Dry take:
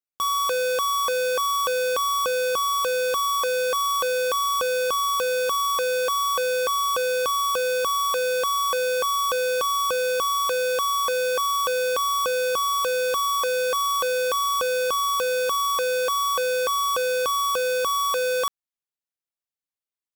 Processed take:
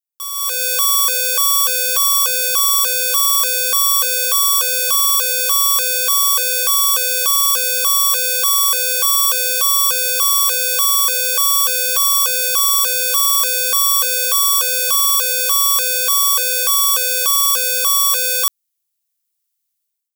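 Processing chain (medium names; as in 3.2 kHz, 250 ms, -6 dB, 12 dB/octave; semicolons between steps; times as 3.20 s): high-pass 43 Hz; differentiator; level rider gain up to 15.5 dB; trim +2 dB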